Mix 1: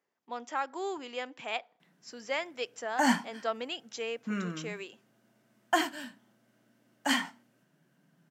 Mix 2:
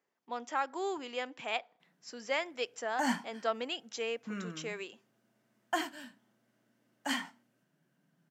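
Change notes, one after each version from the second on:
background -6.0 dB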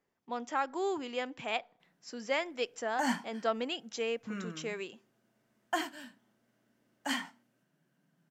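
speech: remove high-pass 390 Hz 6 dB/octave

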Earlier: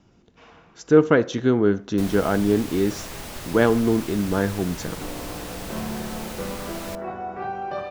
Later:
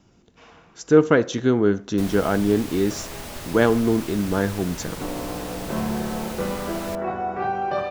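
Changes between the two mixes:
speech: remove distance through air 66 m; second sound +5.0 dB

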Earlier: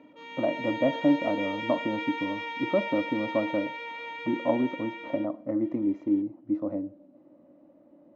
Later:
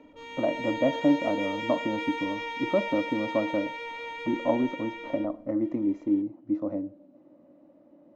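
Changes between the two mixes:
background: remove frequency weighting A; master: remove distance through air 100 m

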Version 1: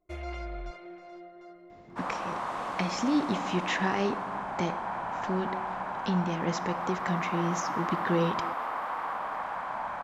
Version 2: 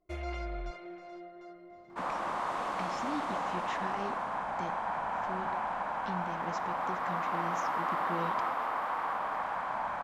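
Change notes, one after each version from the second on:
speech -11.5 dB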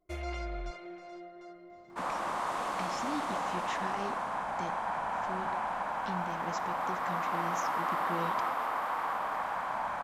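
master: add treble shelf 6.5 kHz +11 dB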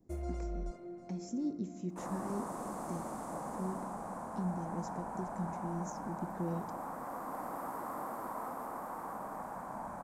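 speech: entry -1.70 s; master: add FFT filter 110 Hz 0 dB, 210 Hz +5 dB, 1.5 kHz -14 dB, 3.1 kHz -24 dB, 8.5 kHz +1 dB

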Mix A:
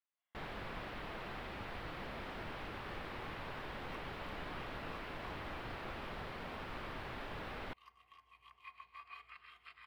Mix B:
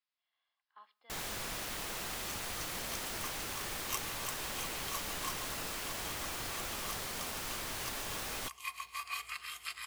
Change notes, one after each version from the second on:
first sound: entry +0.75 s; second sound +8.0 dB; master: remove distance through air 430 m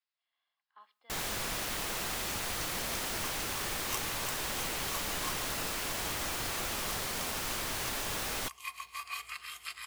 first sound +4.5 dB

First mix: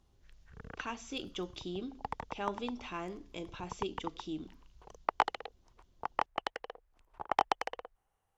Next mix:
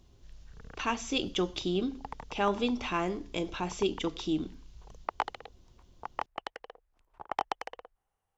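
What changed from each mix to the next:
speech +9.5 dB; background -3.0 dB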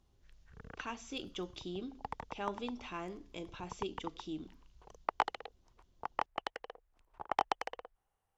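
speech -11.5 dB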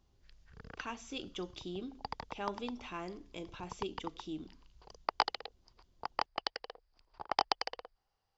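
background: add resonant low-pass 4.8 kHz, resonance Q 13

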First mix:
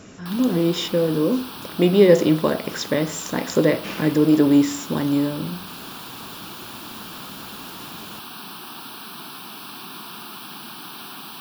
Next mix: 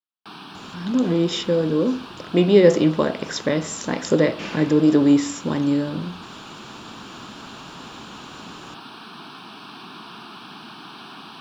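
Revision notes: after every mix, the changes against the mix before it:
speech: entry +0.55 s; background: add distance through air 120 m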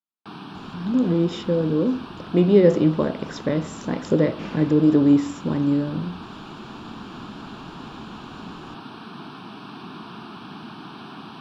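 speech -5.0 dB; master: add tilt EQ -2.5 dB/octave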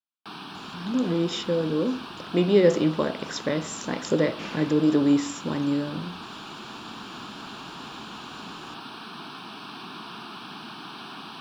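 master: add tilt EQ +2.5 dB/octave

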